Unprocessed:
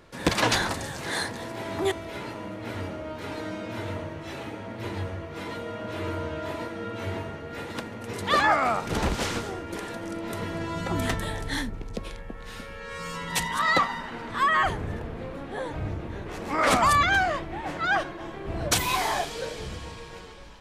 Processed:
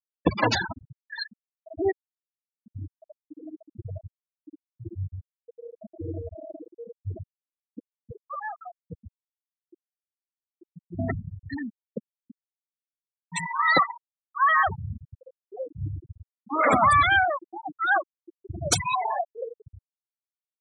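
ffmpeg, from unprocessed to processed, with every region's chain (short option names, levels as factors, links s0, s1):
-filter_complex "[0:a]asettb=1/sr,asplit=3[s0][s1][s2];[s0]atrim=end=8.214[s3];[s1]atrim=start=8.21:end=10.99,asetpts=PTS-STARTPTS,afade=t=in:d=0.004:c=qsin,afade=t=out:st=2.776:d=0.004:c=qsin,acompressor=threshold=0.0631:ratio=4:attack=3.2:release=140:knee=1:detection=peak,aeval=exprs='max(val(0),0)':c=same[s4];[s2]atrim=start=10.986[s5];[s3][s4]acrossfade=d=0.004:c1=hsin:c2=qsin[s6];[s6][s5]acrossfade=d=0.004:c1=qsin:c2=hsin,highpass=f=63:w=0.5412,highpass=f=63:w=1.3066,highshelf=f=7200:g=7.5,afftfilt=real='re*gte(hypot(re,im),0.158)':imag='im*gte(hypot(re,im),0.158)':win_size=1024:overlap=0.75,volume=1.33"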